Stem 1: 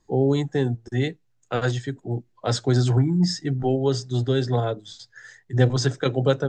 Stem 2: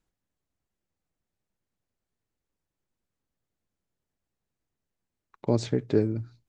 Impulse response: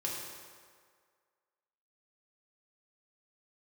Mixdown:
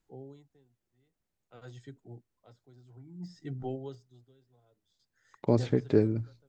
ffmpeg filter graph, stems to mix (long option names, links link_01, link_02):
-filter_complex "[0:a]bandreject=frequency=1700:width=7.5,deesser=0.95,aeval=exprs='val(0)*pow(10,-28*(0.5-0.5*cos(2*PI*0.55*n/s))/20)':channel_layout=same,volume=-10dB,afade=type=in:start_time=1.72:duration=0.66:silence=0.237137,afade=type=out:start_time=3.2:duration=0.8:silence=0.446684[link_01];[1:a]acrossover=split=2900[link_02][link_03];[link_03]acompressor=threshold=-47dB:ratio=4:attack=1:release=60[link_04];[link_02][link_04]amix=inputs=2:normalize=0,volume=-0.5dB[link_05];[link_01][link_05]amix=inputs=2:normalize=0"